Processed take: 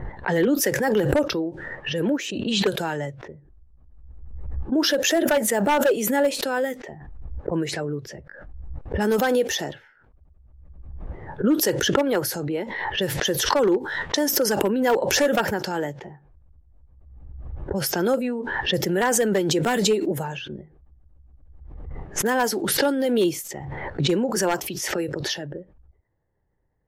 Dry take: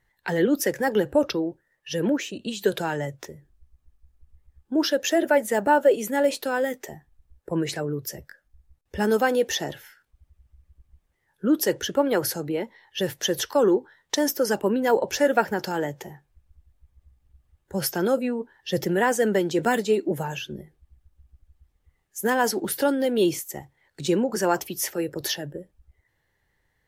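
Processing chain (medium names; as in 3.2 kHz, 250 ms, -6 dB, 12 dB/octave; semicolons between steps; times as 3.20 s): level-controlled noise filter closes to 730 Hz, open at -22 dBFS; wavefolder -13 dBFS; swell ahead of each attack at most 33 dB/s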